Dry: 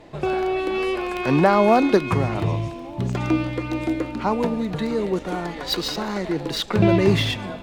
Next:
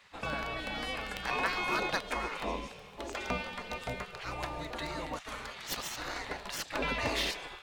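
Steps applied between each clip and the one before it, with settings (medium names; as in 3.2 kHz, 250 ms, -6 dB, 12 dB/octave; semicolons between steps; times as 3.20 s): spectral gate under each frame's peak -15 dB weak; trim -3 dB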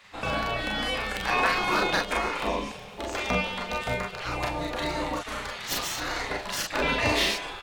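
early reflections 33 ms -5 dB, 43 ms -4 dB; trim +5.5 dB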